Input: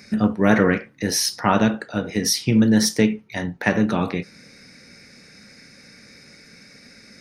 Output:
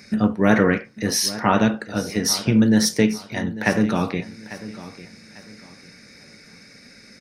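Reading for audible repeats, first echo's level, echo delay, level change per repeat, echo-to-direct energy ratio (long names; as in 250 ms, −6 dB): 2, −16.0 dB, 847 ms, −10.5 dB, −15.5 dB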